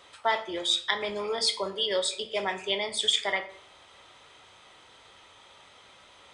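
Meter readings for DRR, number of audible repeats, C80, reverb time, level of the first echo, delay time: 8.5 dB, no echo, 16.5 dB, 0.60 s, no echo, no echo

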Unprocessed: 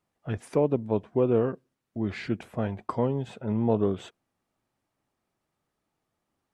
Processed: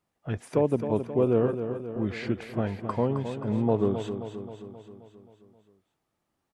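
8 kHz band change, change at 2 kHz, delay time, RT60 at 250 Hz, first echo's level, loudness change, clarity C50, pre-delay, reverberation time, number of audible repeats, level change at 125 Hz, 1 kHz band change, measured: no reading, +0.5 dB, 265 ms, no reverb, -9.0 dB, 0.0 dB, no reverb, no reverb, no reverb, 6, +1.0 dB, +0.5 dB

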